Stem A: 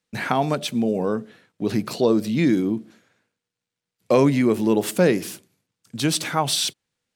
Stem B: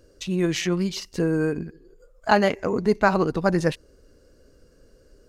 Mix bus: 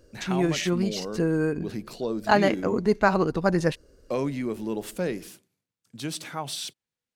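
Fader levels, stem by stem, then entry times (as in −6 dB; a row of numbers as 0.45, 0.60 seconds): −11.0, −1.5 decibels; 0.00, 0.00 seconds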